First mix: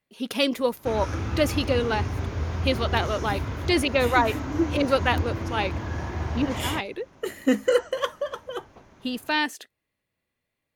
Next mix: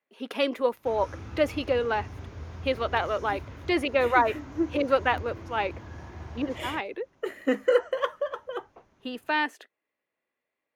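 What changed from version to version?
speech: add three-band isolator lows -24 dB, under 270 Hz, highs -14 dB, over 2.7 kHz; background -11.5 dB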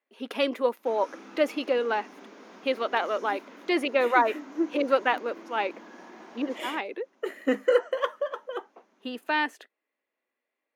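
master: add brick-wall FIR high-pass 190 Hz

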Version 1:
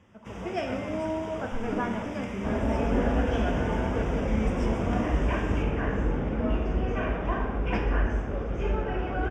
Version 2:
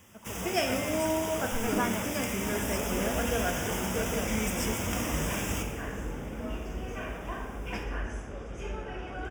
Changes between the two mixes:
speech: send -9.5 dB; second sound -10.0 dB; master: remove tape spacing loss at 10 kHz 27 dB

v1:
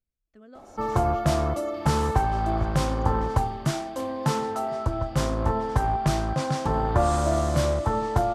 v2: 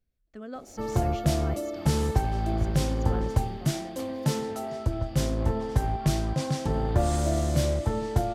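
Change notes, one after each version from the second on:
speech +9.5 dB; first sound: add peaking EQ 1.1 kHz -12.5 dB 1.2 oct; master: remove low-pass 12 kHz 12 dB/octave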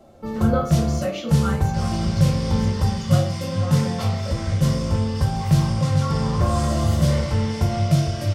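first sound: entry -0.55 s; second sound: remove rippled Chebyshev low-pass 4.8 kHz, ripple 3 dB; reverb: on, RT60 0.45 s

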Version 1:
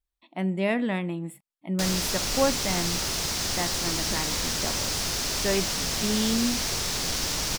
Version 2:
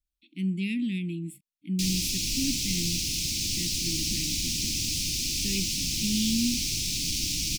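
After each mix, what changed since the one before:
master: add Chebyshev band-stop 320–2400 Hz, order 4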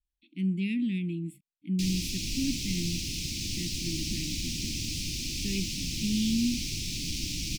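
master: add treble shelf 3.8 kHz -9.5 dB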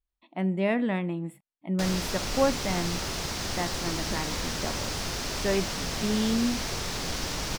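master: remove Chebyshev band-stop 320–2400 Hz, order 4

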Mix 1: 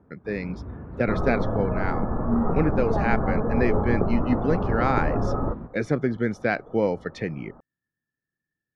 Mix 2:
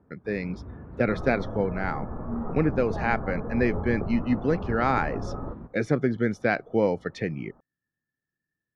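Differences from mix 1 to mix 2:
first sound -4.0 dB; second sound -9.0 dB

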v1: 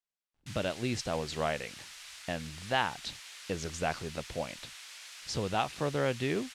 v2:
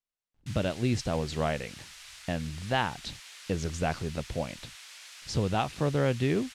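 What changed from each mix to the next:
speech: add bass shelf 300 Hz +9.5 dB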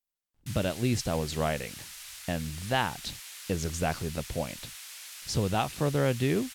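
master: remove distance through air 60 m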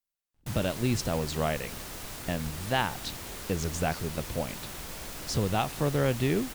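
background: remove Butterworth band-pass 5.8 kHz, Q 0.52

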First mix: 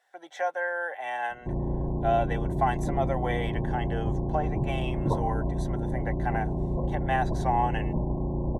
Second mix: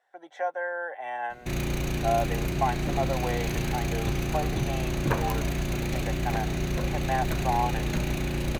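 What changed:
speech: add treble shelf 2.5 kHz -10 dB; background: remove brick-wall FIR low-pass 1.1 kHz

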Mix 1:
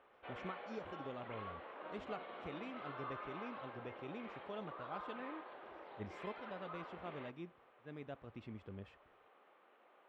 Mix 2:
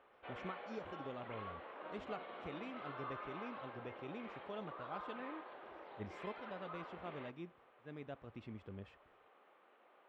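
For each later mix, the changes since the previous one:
no change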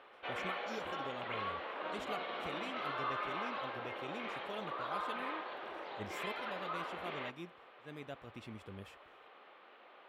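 background +6.0 dB; master: remove tape spacing loss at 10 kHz 25 dB

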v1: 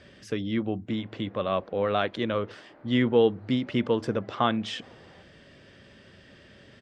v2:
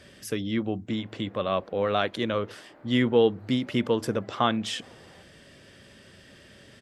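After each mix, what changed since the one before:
master: remove distance through air 110 m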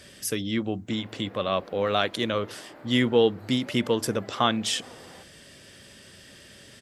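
background +5.5 dB; master: add treble shelf 4.2 kHz +11.5 dB

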